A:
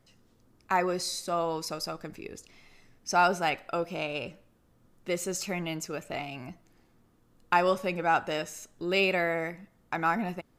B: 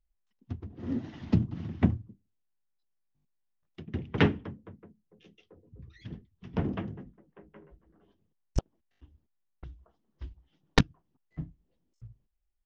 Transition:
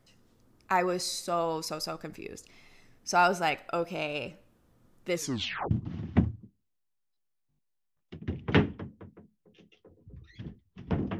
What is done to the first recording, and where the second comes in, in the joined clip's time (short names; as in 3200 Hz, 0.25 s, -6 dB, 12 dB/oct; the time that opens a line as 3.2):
A
5.14 tape stop 0.57 s
5.71 switch to B from 1.37 s